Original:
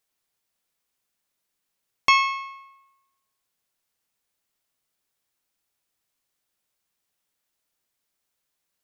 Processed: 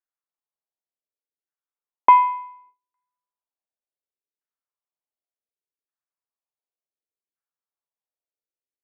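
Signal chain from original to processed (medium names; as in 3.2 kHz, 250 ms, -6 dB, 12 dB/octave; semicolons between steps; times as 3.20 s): LFO low-pass saw down 0.68 Hz 440–1700 Hz; mistuned SSB -96 Hz 390–3400 Hz; gate with hold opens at -47 dBFS; trim +4 dB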